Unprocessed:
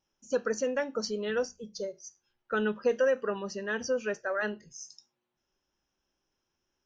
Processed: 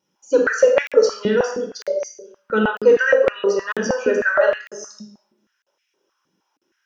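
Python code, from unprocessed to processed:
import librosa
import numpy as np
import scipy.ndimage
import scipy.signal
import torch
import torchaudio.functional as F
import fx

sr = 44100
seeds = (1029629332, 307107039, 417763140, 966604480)

y = fx.room_shoebox(x, sr, seeds[0], volume_m3=2600.0, walls='furnished', distance_m=4.7)
y = fx.buffer_crackle(y, sr, first_s=0.87, period_s=0.95, block=2048, kind='zero')
y = fx.filter_held_highpass(y, sr, hz=6.4, low_hz=210.0, high_hz=2300.0)
y = y * librosa.db_to_amplitude(4.5)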